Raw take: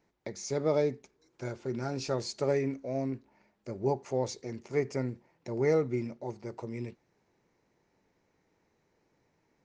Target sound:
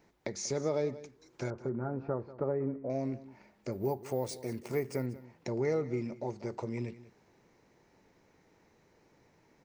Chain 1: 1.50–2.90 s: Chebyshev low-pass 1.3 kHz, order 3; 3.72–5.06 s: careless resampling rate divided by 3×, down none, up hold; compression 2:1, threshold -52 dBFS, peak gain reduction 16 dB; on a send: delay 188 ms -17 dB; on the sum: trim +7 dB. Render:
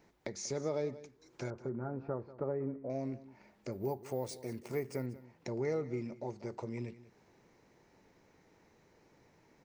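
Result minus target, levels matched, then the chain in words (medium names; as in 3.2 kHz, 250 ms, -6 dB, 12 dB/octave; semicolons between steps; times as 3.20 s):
compression: peak gain reduction +4 dB
1.50–2.90 s: Chebyshev low-pass 1.3 kHz, order 3; 3.72–5.06 s: careless resampling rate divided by 3×, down none, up hold; compression 2:1, threshold -44.5 dBFS, peak gain reduction 12 dB; on a send: delay 188 ms -17 dB; on the sum: trim +7 dB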